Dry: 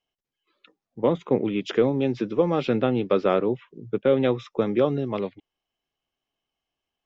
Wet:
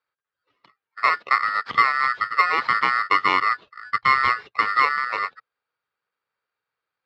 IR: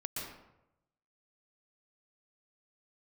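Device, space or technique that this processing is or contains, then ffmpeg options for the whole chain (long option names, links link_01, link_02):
ring modulator pedal into a guitar cabinet: -filter_complex "[0:a]aeval=exprs='val(0)*sgn(sin(2*PI*1600*n/s))':channel_layout=same,highpass=88,equalizer=frequency=120:width_type=q:width=4:gain=6,equalizer=frequency=450:width_type=q:width=4:gain=6,equalizer=frequency=1200:width_type=q:width=4:gain=6,lowpass=frequency=3800:width=0.5412,lowpass=frequency=3800:width=1.3066,asettb=1/sr,asplit=3[link_01][link_02][link_03];[link_01]atrim=end=3.434[link_04];[link_02]atrim=start=3.43:end=4.61,asetpts=PTS-STARTPTS,afade=type=in:duration=0.004:curve=qsin,afade=type=out:start_time=1.176:duration=0.004:curve=qsin,asubboost=boost=10.5:cutoff=130[link_05];[link_03]atrim=start=4.606[link_06];[link_04][link_05]acrossfade=duration=0.004:curve1=hsin:curve2=qsin[link_07];[link_07][link_06]acrossfade=duration=0.004:curve1=qsin:curve2=hsin"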